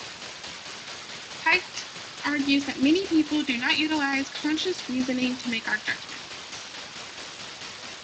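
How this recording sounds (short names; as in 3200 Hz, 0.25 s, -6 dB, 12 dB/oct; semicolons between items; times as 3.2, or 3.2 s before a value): phasing stages 2, 0.45 Hz, lowest notch 500–1100 Hz; a quantiser's noise floor 6-bit, dither triangular; tremolo saw down 4.6 Hz, depth 50%; Speex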